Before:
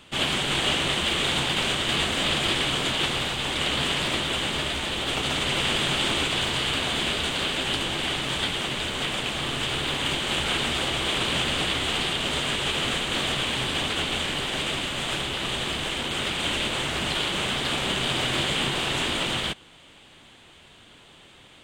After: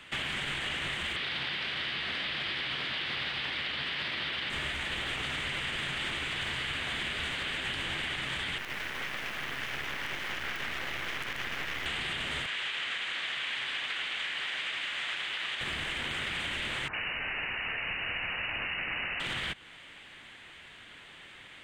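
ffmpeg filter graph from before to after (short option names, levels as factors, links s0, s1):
-filter_complex "[0:a]asettb=1/sr,asplit=3[s0][s1][s2];[s0]atrim=end=1.164[s3];[s1]atrim=start=1.16:end=4.5,asetpts=PTS-STARTPTS,afade=t=in:d=0.004:c=qsin,afade=t=out:st=3.336:d=0.004:c=qsin,highpass=f=140:p=1,highshelf=f=5900:t=q:w=3:g=-7.5[s4];[s2]atrim=start=4.496[s5];[s3][s4]acrossfade=d=0.004:c1=hsin:c2=qsin[s6];[s6][s5]acrossfade=d=0.004:c1=qsin:c2=hsin,asettb=1/sr,asplit=3[s7][s8][s9];[s7]atrim=end=8.584[s10];[s8]atrim=start=8.58:end=11.86,asetpts=PTS-STARTPTS,afade=t=in:d=0.004:c=qsin,afade=t=out:st=3.276:d=0.004:c=qsin,lowpass=2600,lowshelf=f=170:g=-5.5,acrusher=bits=4:dc=4:mix=0:aa=0.000001[s11];[s9]atrim=start=11.856[s12];[s10][s11]acrossfade=d=0.004:c1=hsin:c2=qsin[s13];[s13][s12]acrossfade=d=0.004:c1=qsin:c2=hsin,asettb=1/sr,asplit=3[s14][s15][s16];[s14]atrim=end=12.464[s17];[s15]atrim=start=12.46:end=15.61,asetpts=PTS-STARTPTS,afade=t=in:d=0.004:c=qsin,afade=t=out:st=3.146:d=0.004:c=qsin,highpass=f=1200:p=1,acrossover=split=6600[s18][s19];[s19]acompressor=threshold=0.00224:ratio=4:attack=1:release=60[s20];[s18][s20]amix=inputs=2:normalize=0[s21];[s16]atrim=start=15.606[s22];[s17][s21]acrossfade=d=0.004:c1=hsin:c2=qsin[s23];[s23][s22]acrossfade=d=0.004:c1=qsin:c2=hsin,asettb=1/sr,asplit=3[s24][s25][s26];[s24]atrim=end=16.884[s27];[s25]atrim=start=16.88:end=19.2,asetpts=PTS-STARTPTS,afade=t=in:d=0.004:c=qsin,afade=t=out:st=2.316:d=0.004:c=qsin,lowpass=f=2600:t=q:w=0.5098,lowpass=f=2600:t=q:w=0.6013,lowpass=f=2600:t=q:w=0.9,lowpass=f=2600:t=q:w=2.563,afreqshift=-3000,acrossover=split=1500[s28][s29];[s29]adelay=50[s30];[s28][s30]amix=inputs=2:normalize=0,atrim=end_sample=102312[s31];[s26]atrim=start=19.196[s32];[s27][s31]acrossfade=d=0.004:c1=hsin:c2=qsin[s33];[s33][s32]acrossfade=d=0.004:c1=qsin:c2=hsin,equalizer=f=1900:w=1.2:g=13,alimiter=limit=0.211:level=0:latency=1,acrossover=split=160[s34][s35];[s35]acompressor=threshold=0.0398:ratio=3[s36];[s34][s36]amix=inputs=2:normalize=0,volume=0.531"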